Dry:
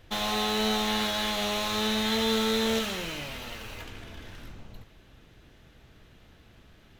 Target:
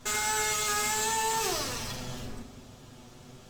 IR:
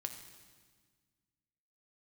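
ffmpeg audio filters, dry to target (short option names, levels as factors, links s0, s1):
-filter_complex "[0:a]alimiter=limit=0.0631:level=0:latency=1:release=58,asplit=2[s0][s1];[1:a]atrim=start_sample=2205,adelay=16[s2];[s1][s2]afir=irnorm=-1:irlink=0,volume=1.58[s3];[s0][s3]amix=inputs=2:normalize=0,asetrate=88200,aresample=44100"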